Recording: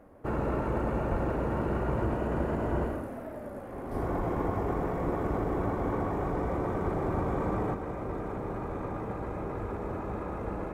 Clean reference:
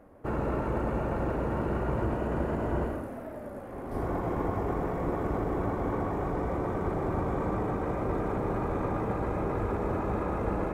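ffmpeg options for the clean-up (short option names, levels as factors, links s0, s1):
-filter_complex "[0:a]asplit=3[s0][s1][s2];[s0]afade=t=out:st=1.1:d=0.02[s3];[s1]highpass=f=140:w=0.5412,highpass=f=140:w=1.3066,afade=t=in:st=1.1:d=0.02,afade=t=out:st=1.22:d=0.02[s4];[s2]afade=t=in:st=1.22:d=0.02[s5];[s3][s4][s5]amix=inputs=3:normalize=0,asplit=3[s6][s7][s8];[s6]afade=t=out:st=4.17:d=0.02[s9];[s7]highpass=f=140:w=0.5412,highpass=f=140:w=1.3066,afade=t=in:st=4.17:d=0.02,afade=t=out:st=4.29:d=0.02[s10];[s8]afade=t=in:st=4.29:d=0.02[s11];[s9][s10][s11]amix=inputs=3:normalize=0,asetnsamples=n=441:p=0,asendcmd='7.74 volume volume 5dB',volume=1"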